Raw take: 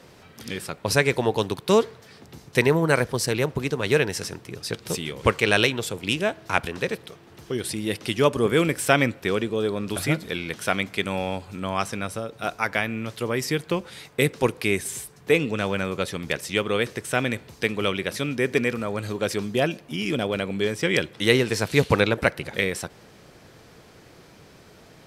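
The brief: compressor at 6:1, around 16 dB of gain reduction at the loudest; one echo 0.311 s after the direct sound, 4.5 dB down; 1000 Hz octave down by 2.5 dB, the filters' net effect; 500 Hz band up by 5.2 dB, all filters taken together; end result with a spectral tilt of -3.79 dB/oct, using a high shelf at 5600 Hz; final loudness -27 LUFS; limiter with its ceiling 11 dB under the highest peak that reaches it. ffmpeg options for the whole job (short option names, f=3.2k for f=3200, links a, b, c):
-af "equalizer=f=500:t=o:g=7.5,equalizer=f=1k:t=o:g=-7,highshelf=f=5.6k:g=9,acompressor=threshold=-28dB:ratio=6,alimiter=limit=-23dB:level=0:latency=1,aecho=1:1:311:0.596,volume=6.5dB"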